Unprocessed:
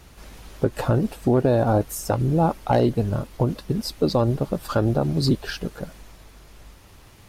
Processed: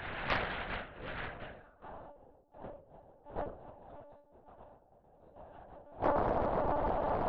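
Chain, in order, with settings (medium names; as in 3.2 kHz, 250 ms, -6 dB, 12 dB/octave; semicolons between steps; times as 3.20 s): spectral levelling over time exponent 0.4; gate with hold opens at -14 dBFS; band-pass sweep 2 kHz -> 740 Hz, 1.50–2.04 s; compressor with a negative ratio -47 dBFS, ratio -0.5; graphic EQ 250/500/1000 Hz -4/+3/-4 dB; simulated room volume 450 m³, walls furnished, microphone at 3.9 m; monotone LPC vocoder at 8 kHz 290 Hz; loudspeaker Doppler distortion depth 0.91 ms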